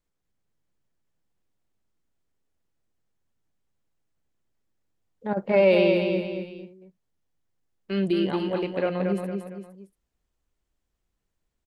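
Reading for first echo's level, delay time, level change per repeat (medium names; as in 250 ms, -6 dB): -5.0 dB, 229 ms, -7.5 dB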